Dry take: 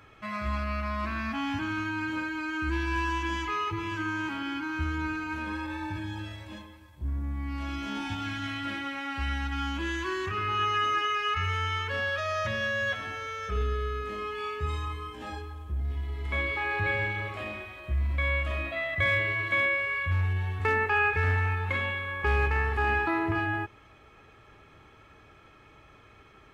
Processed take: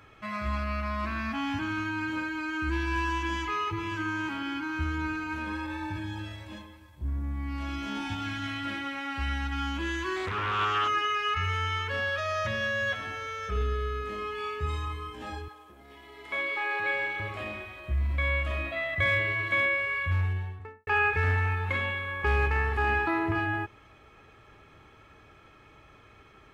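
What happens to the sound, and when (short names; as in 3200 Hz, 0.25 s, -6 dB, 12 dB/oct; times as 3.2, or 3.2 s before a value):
10.16–10.88 Doppler distortion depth 0.59 ms
15.48–17.2 HPF 380 Hz
20.14–20.87 studio fade out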